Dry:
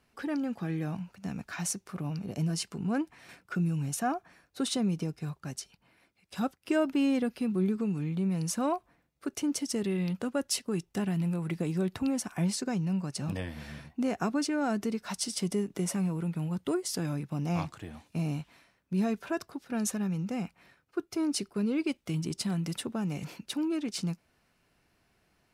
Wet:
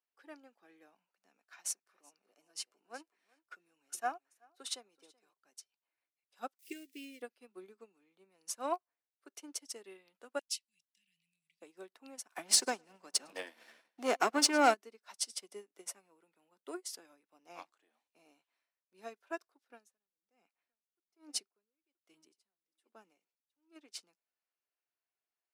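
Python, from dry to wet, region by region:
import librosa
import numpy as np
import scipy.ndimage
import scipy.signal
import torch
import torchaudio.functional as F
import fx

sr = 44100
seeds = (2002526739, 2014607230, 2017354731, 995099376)

y = fx.chain(x, sr, fx.low_shelf(hz=210.0, db=-9.0),
    fx.echo_feedback(ms=379, feedback_pct=18, wet_db=-12.0), at=(1.37, 5.33))
y = fx.chain(y, sr, fx.crossing_spikes(level_db=-34.5),
    fx.cheby1_bandstop(low_hz=440.0, high_hz=2000.0, order=3), at=(6.59, 7.22))
y = fx.chain(y, sr, fx.cheby2_bandstop(low_hz=280.0, high_hz=1400.0, order=4, stop_db=40),
    fx.high_shelf(hz=9300.0, db=-10.5), at=(10.39, 11.62))
y = fx.chain(y, sr, fx.highpass(hz=94.0, slope=12),
    fx.leveller(passes=2),
    fx.echo_feedback(ms=106, feedback_pct=51, wet_db=-18), at=(12.29, 14.74))
y = fx.chain(y, sr, fx.low_shelf(hz=180.0, db=5.5),
    fx.echo_single(ms=973, db=-18.0),
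    fx.tremolo_db(hz=1.2, depth_db=32), at=(19.69, 23.76))
y = scipy.signal.sosfilt(scipy.signal.bessel(6, 510.0, 'highpass', norm='mag', fs=sr, output='sos'), y)
y = fx.upward_expand(y, sr, threshold_db=-46.0, expansion=2.5)
y = y * 10.0 ** (4.5 / 20.0)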